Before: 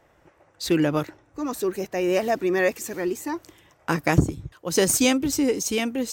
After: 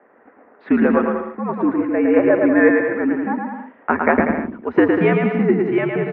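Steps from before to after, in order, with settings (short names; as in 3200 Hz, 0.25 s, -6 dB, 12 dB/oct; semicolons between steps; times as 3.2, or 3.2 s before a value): mistuned SSB -84 Hz 320–2100 Hz; bouncing-ball echo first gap 0.11 s, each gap 0.75×, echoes 5; gain +7.5 dB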